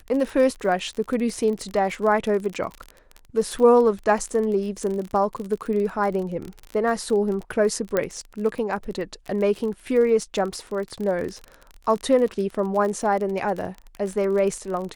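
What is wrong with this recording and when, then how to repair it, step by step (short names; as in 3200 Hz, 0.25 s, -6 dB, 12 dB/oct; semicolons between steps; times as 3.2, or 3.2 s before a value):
crackle 33/s -28 dBFS
7.97 pop -9 dBFS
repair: de-click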